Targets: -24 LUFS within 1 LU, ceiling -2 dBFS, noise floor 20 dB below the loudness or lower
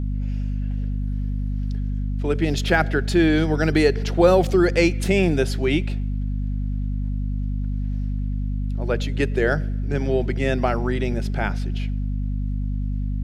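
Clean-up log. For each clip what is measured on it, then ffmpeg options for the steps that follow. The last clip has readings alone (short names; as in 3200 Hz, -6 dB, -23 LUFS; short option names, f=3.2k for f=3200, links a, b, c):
hum 50 Hz; harmonics up to 250 Hz; hum level -22 dBFS; loudness -23.0 LUFS; peak -4.0 dBFS; loudness target -24.0 LUFS
-> -af "bandreject=f=50:t=h:w=4,bandreject=f=100:t=h:w=4,bandreject=f=150:t=h:w=4,bandreject=f=200:t=h:w=4,bandreject=f=250:t=h:w=4"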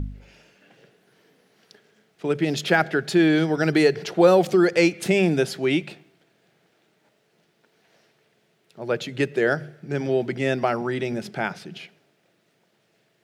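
hum none; loudness -22.0 LUFS; peak -4.0 dBFS; loudness target -24.0 LUFS
-> -af "volume=-2dB"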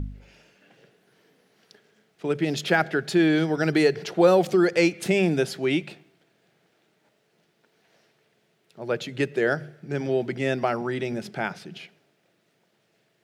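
loudness -24.0 LUFS; peak -6.0 dBFS; noise floor -69 dBFS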